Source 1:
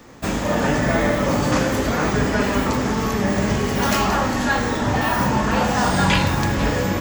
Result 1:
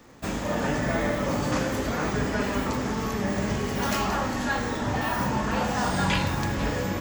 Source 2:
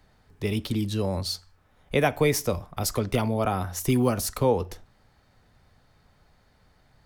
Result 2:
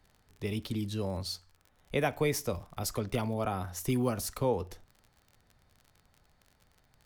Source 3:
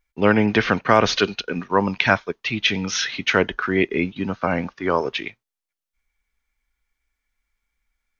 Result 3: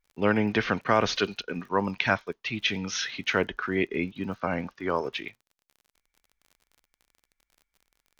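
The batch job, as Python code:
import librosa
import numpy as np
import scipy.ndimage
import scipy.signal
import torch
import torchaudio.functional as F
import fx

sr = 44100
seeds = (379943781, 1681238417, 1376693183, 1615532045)

y = fx.dmg_crackle(x, sr, seeds[0], per_s=39.0, level_db=-37.0)
y = y * librosa.db_to_amplitude(-7.0)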